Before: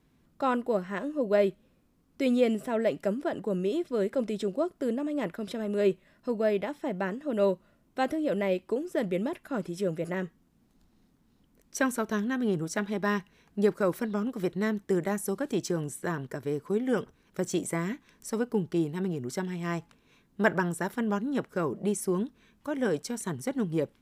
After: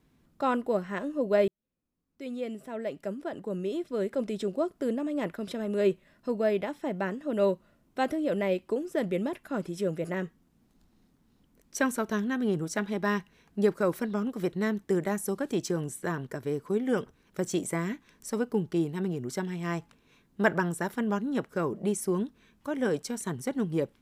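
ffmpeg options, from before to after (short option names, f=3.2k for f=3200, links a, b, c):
-filter_complex "[0:a]asplit=2[a][b];[a]atrim=end=1.48,asetpts=PTS-STARTPTS,afade=t=out:st=1.476:d=0.004:c=hsin[c];[b]atrim=start=1.48,asetpts=PTS-STARTPTS,afade=t=in:d=3.17[d];[c][d]concat=n=2:v=0:a=1"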